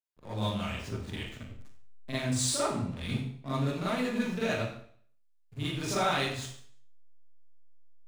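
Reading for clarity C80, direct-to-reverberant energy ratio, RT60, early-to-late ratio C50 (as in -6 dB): 4.5 dB, -10.5 dB, 0.55 s, -1.0 dB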